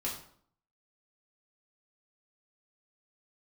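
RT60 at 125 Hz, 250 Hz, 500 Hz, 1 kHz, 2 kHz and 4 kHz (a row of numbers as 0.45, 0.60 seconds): 0.70, 0.70, 0.60, 0.60, 0.50, 0.45 seconds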